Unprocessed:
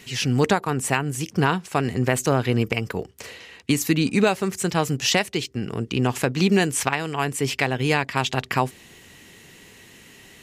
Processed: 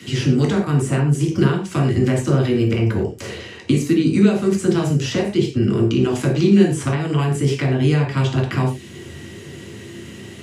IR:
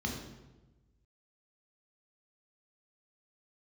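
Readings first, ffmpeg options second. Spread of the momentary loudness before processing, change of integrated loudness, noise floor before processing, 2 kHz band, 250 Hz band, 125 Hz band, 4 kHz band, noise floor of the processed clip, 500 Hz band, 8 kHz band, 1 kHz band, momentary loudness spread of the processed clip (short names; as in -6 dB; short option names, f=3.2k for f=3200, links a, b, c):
8 LU, +4.5 dB, -49 dBFS, -3.5 dB, +7.0 dB, +8.0 dB, -2.5 dB, -37 dBFS, +4.5 dB, -4.5 dB, -4.5 dB, 20 LU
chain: -filter_complex "[0:a]acrossover=split=240|1700[a][b][c];[a]acompressor=threshold=-35dB:ratio=4[d];[b]acompressor=threshold=-34dB:ratio=4[e];[c]acompressor=threshold=-37dB:ratio=4[f];[d][e][f]amix=inputs=3:normalize=0[g];[1:a]atrim=start_sample=2205,afade=t=out:st=0.24:d=0.01,atrim=end_sample=11025,asetrate=66150,aresample=44100[h];[g][h]afir=irnorm=-1:irlink=0,volume=6dB"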